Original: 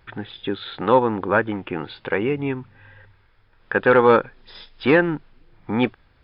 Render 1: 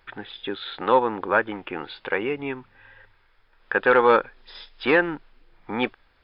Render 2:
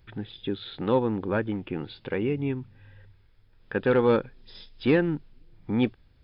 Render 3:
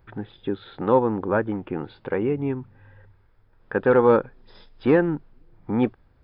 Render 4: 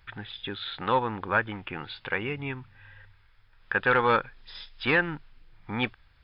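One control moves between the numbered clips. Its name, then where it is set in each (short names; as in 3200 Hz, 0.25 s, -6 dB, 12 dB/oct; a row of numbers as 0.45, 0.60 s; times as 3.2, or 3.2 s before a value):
bell, frequency: 110, 1200, 3200, 350 Hz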